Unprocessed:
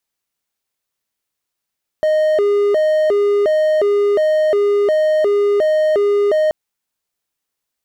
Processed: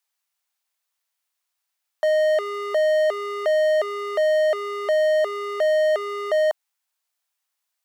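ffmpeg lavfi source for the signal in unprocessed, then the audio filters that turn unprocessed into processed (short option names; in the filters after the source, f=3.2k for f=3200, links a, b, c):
-f lavfi -i "aevalsrc='0.335*(1-4*abs(mod((513.5*t+105.5/1.4*(0.5-abs(mod(1.4*t,1)-0.5)))+0.25,1)-0.5))':d=4.48:s=44100"
-af "highpass=f=660:w=0.5412,highpass=f=660:w=1.3066"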